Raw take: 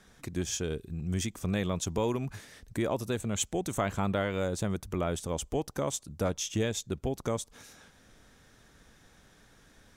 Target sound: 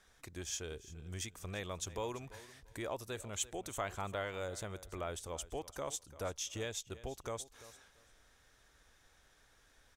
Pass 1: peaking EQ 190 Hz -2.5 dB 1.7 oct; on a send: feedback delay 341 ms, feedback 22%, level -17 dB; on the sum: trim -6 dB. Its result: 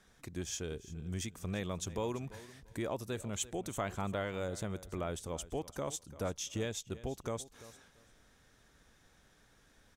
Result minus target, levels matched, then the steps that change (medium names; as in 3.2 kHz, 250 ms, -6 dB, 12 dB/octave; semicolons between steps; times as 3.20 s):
250 Hz band +5.0 dB
change: peaking EQ 190 Hz -13 dB 1.7 oct